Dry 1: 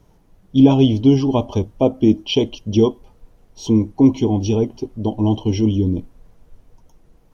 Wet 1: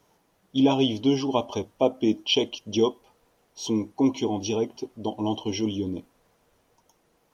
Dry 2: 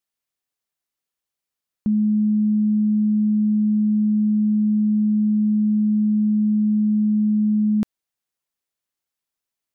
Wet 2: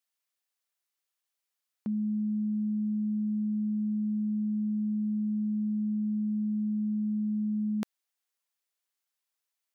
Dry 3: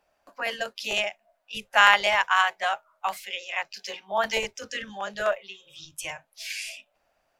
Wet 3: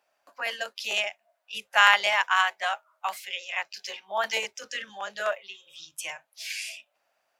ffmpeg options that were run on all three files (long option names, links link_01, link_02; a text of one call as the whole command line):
ffmpeg -i in.wav -af "highpass=frequency=760:poles=1" out.wav